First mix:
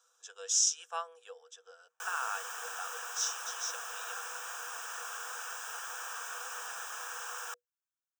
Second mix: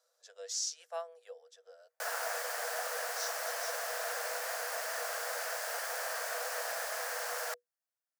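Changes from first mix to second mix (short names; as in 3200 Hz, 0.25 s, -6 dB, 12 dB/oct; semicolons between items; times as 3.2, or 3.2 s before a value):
speech -10.0 dB; master: remove fixed phaser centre 3000 Hz, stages 8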